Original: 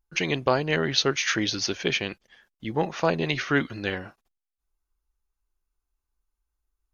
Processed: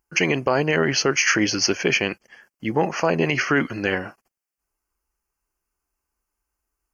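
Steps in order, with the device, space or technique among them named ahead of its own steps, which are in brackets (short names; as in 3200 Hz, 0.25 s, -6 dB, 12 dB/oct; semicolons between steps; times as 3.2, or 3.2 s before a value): PA system with an anti-feedback notch (HPF 160 Hz 6 dB/oct; Butterworth band-stop 3700 Hz, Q 2.3; limiter -16 dBFS, peak gain reduction 8 dB); gain +8.5 dB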